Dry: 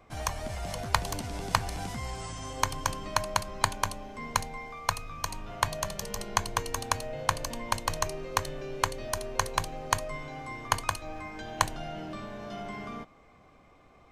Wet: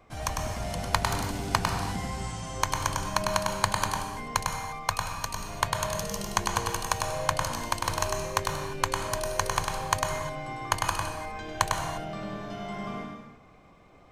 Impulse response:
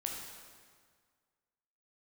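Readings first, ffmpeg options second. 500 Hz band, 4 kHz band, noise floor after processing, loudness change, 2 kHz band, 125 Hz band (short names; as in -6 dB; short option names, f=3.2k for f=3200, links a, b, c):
+3.0 dB, +2.0 dB, -54 dBFS, +2.5 dB, +2.5 dB, +3.5 dB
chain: -filter_complex "[0:a]asplit=2[a][b];[b]equalizer=f=170:t=o:w=1:g=6[c];[1:a]atrim=start_sample=2205,afade=t=out:st=0.31:d=0.01,atrim=end_sample=14112,adelay=101[d];[c][d]afir=irnorm=-1:irlink=0,volume=-2dB[e];[a][e]amix=inputs=2:normalize=0"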